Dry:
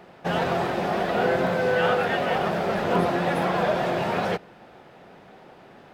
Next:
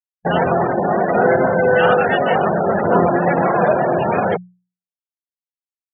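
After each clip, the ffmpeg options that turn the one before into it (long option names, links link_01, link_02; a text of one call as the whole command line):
ffmpeg -i in.wav -af "afftfilt=real='re*gte(hypot(re,im),0.0631)':imag='im*gte(hypot(re,im),0.0631)':win_size=1024:overlap=0.75,anlmdn=3.98,bandreject=frequency=60:width_type=h:width=6,bandreject=frequency=120:width_type=h:width=6,bandreject=frequency=180:width_type=h:width=6,volume=8.5dB" out.wav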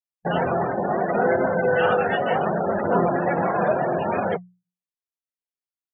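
ffmpeg -i in.wav -af "flanger=delay=3.2:depth=6.9:regen=-61:speed=0.72:shape=sinusoidal,volume=-2dB" out.wav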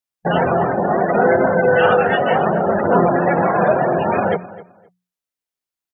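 ffmpeg -i in.wav -filter_complex "[0:a]asplit=2[link_01][link_02];[link_02]adelay=260,lowpass=frequency=2800:poles=1,volume=-17.5dB,asplit=2[link_03][link_04];[link_04]adelay=260,lowpass=frequency=2800:poles=1,volume=0.2[link_05];[link_01][link_03][link_05]amix=inputs=3:normalize=0,volume=6dB" out.wav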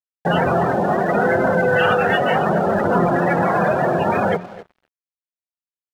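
ffmpeg -i in.wav -filter_complex "[0:a]acrossover=split=190|1300[link_01][link_02][link_03];[link_02]alimiter=limit=-13.5dB:level=0:latency=1[link_04];[link_01][link_04][link_03]amix=inputs=3:normalize=0,aeval=exprs='sgn(val(0))*max(abs(val(0))-0.00708,0)':channel_layout=same,volume=2dB" out.wav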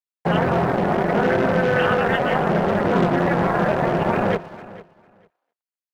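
ffmpeg -i in.wav -filter_complex "[0:a]acrossover=split=520[link_01][link_02];[link_01]acrusher=bits=3:mix=0:aa=0.5[link_03];[link_02]tremolo=f=240:d=0.947[link_04];[link_03][link_04]amix=inputs=2:normalize=0,aecho=1:1:451|902:0.119|0.0202" out.wav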